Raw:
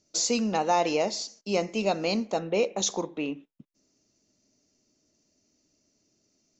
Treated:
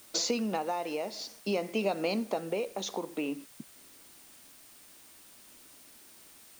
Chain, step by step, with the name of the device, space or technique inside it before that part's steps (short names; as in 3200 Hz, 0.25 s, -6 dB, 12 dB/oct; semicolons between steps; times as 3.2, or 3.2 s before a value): medium wave at night (BPF 190–3800 Hz; compressor, threshold -35 dBFS, peak gain reduction 14.5 dB; tremolo 0.52 Hz, depth 42%; whine 9000 Hz -69 dBFS; white noise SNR 20 dB); gain +8 dB